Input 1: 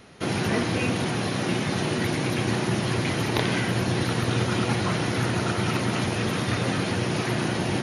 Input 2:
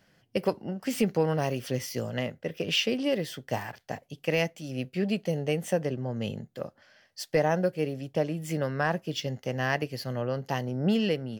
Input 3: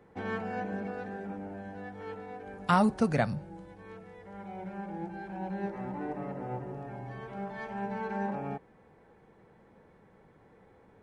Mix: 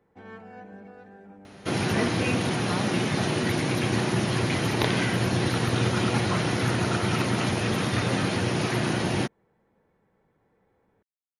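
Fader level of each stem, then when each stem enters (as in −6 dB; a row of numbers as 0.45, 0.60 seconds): 0.0 dB, muted, −9.0 dB; 1.45 s, muted, 0.00 s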